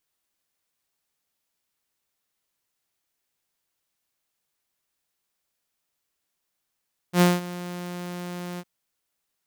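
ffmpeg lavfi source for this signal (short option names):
-f lavfi -i "aevalsrc='0.282*(2*mod(177*t,1)-1)':d=1.508:s=44100,afade=t=in:d=0.081,afade=t=out:st=0.081:d=0.193:silence=0.119,afade=t=out:st=1.46:d=0.048"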